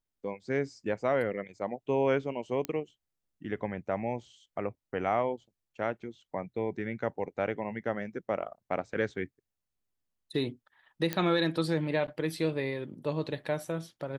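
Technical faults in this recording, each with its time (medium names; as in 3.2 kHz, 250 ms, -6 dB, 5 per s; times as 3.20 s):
2.65 s: pop -17 dBFS
11.13 s: pop -14 dBFS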